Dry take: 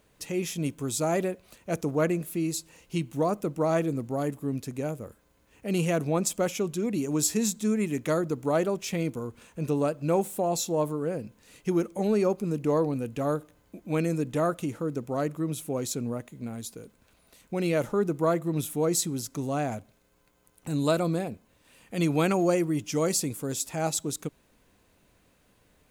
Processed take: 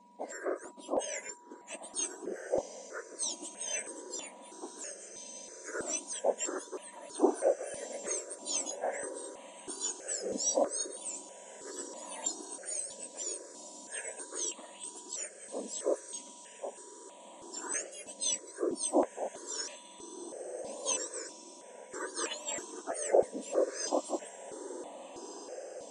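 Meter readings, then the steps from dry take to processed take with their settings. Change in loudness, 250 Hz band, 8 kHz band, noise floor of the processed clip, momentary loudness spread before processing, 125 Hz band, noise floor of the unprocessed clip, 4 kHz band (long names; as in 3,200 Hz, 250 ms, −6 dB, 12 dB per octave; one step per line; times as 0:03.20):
−7.5 dB, −14.0 dB, 0.0 dB, −52 dBFS, 11 LU, below −30 dB, −65 dBFS, −3.5 dB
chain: frequency axis turned over on the octave scale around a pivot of 2,000 Hz
Butterworth low-pass 8,700 Hz 72 dB per octave
steady tone 970 Hz −54 dBFS
feedback delay with all-pass diffusion 1,628 ms, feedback 51%, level −12 dB
step-sequenced phaser 3.1 Hz 370–1,500 Hz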